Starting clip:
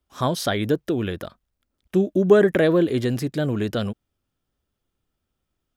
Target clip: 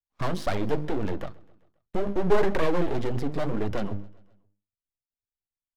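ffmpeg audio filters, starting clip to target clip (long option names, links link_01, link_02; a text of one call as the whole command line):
ffmpeg -i in.wav -filter_complex "[0:a]aemphasis=mode=reproduction:type=75fm,agate=range=-31dB:threshold=-37dB:ratio=16:detection=peak,lowshelf=frequency=200:gain=10.5,bandreject=frequency=50:width_type=h:width=6,bandreject=frequency=100:width_type=h:width=6,bandreject=frequency=150:width_type=h:width=6,bandreject=frequency=200:width_type=h:width=6,bandreject=frequency=250:width_type=h:width=6,bandreject=frequency=300:width_type=h:width=6,bandreject=frequency=350:width_type=h:width=6,bandreject=frequency=400:width_type=h:width=6,acrossover=split=350|2300[link_01][link_02][link_03];[link_01]alimiter=limit=-20.5dB:level=0:latency=1[link_04];[link_04][link_02][link_03]amix=inputs=3:normalize=0,aeval=exprs='max(val(0),0)':channel_layout=same,flanger=delay=0.2:depth=8.2:regen=43:speed=1.9:shape=triangular,asplit=2[link_05][link_06];[link_06]asoftclip=type=hard:threshold=-25.5dB,volume=-4dB[link_07];[link_05][link_07]amix=inputs=2:normalize=0,aecho=1:1:132|264|396|528:0.0631|0.036|0.0205|0.0117" out.wav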